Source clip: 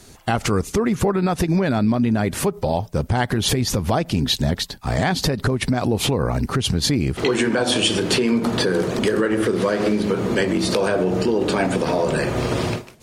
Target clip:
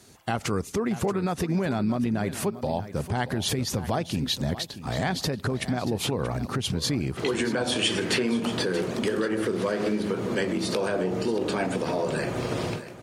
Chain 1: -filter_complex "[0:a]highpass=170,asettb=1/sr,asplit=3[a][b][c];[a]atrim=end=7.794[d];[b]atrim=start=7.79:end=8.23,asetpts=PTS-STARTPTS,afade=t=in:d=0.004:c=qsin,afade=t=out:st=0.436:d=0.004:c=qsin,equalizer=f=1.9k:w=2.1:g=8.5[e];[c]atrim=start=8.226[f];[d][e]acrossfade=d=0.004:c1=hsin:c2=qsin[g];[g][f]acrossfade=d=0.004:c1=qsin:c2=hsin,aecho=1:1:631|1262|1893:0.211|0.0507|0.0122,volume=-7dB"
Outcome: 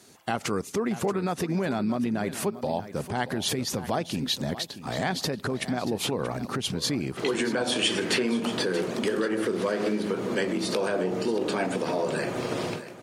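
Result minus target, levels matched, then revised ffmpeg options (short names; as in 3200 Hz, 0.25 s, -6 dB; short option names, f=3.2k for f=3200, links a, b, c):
125 Hz band -4.0 dB
-filter_complex "[0:a]highpass=80,asettb=1/sr,asplit=3[a][b][c];[a]atrim=end=7.794[d];[b]atrim=start=7.79:end=8.23,asetpts=PTS-STARTPTS,afade=t=in:d=0.004:c=qsin,afade=t=out:st=0.436:d=0.004:c=qsin,equalizer=f=1.9k:w=2.1:g=8.5[e];[c]atrim=start=8.226[f];[d][e]acrossfade=d=0.004:c1=hsin:c2=qsin[g];[g][f]acrossfade=d=0.004:c1=qsin:c2=hsin,aecho=1:1:631|1262|1893:0.211|0.0507|0.0122,volume=-7dB"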